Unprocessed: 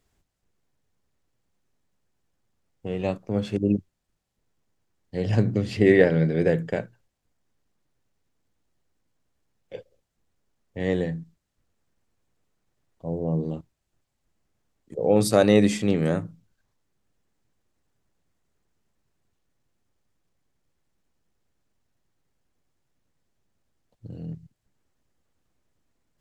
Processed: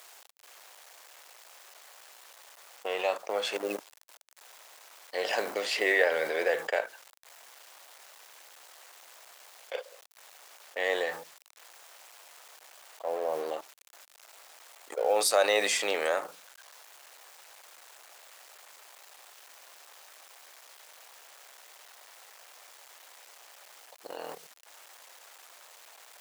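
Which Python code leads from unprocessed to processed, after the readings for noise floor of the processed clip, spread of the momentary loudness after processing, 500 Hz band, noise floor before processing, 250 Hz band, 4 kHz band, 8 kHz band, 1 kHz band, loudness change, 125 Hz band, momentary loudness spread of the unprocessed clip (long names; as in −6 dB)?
−58 dBFS, 18 LU, −5.5 dB, −79 dBFS, −21.0 dB, +4.5 dB, +4.5 dB, +2.5 dB, −6.5 dB, below −35 dB, 21 LU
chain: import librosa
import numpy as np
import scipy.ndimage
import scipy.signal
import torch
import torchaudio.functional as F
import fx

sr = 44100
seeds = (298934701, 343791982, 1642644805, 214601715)

y = fx.law_mismatch(x, sr, coded='A')
y = scipy.signal.sosfilt(scipy.signal.butter(4, 610.0, 'highpass', fs=sr, output='sos'), y)
y = fx.env_flatten(y, sr, amount_pct=50)
y = y * librosa.db_to_amplitude(-1.5)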